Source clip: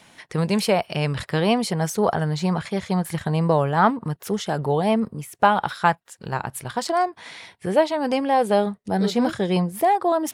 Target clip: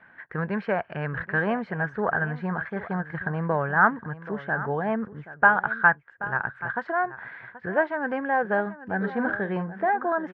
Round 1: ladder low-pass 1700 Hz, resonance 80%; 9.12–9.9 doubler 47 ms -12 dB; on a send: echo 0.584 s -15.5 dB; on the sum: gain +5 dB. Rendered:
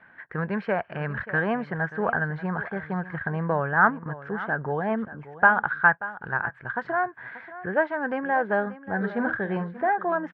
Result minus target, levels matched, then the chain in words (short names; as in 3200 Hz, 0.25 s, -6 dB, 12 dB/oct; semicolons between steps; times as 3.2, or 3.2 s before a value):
echo 0.196 s early
ladder low-pass 1700 Hz, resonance 80%; 9.12–9.9 doubler 47 ms -12 dB; on a send: echo 0.78 s -15.5 dB; on the sum: gain +5 dB